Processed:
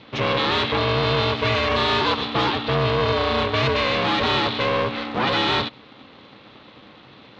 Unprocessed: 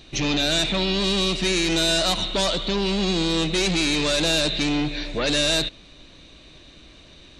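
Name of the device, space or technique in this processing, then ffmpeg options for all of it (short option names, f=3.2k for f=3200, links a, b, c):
ring modulator pedal into a guitar cabinet: -af "equalizer=f=1.7k:t=o:w=0.77:g=4,aeval=exprs='val(0)*sgn(sin(2*PI*260*n/s))':c=same,highpass=88,equalizer=f=130:t=q:w=4:g=9,equalizer=f=470:t=q:w=4:g=5,equalizer=f=1.1k:t=q:w=4:g=8,lowpass=f=3.8k:w=0.5412,lowpass=f=3.8k:w=1.3066"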